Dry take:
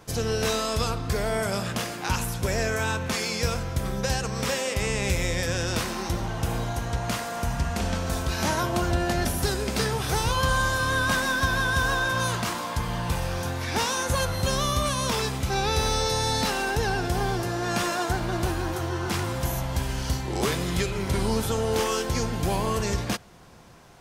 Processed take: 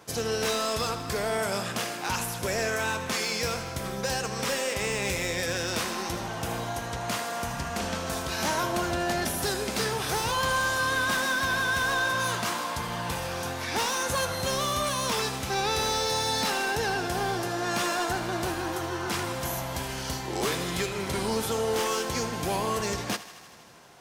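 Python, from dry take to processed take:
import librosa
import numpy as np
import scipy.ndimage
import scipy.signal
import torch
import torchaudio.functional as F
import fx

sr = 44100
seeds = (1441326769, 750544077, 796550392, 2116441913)

y = fx.highpass(x, sr, hz=260.0, slope=6)
y = np.clip(y, -10.0 ** (-22.0 / 20.0), 10.0 ** (-22.0 / 20.0))
y = fx.echo_thinned(y, sr, ms=79, feedback_pct=78, hz=420.0, wet_db=-14.5)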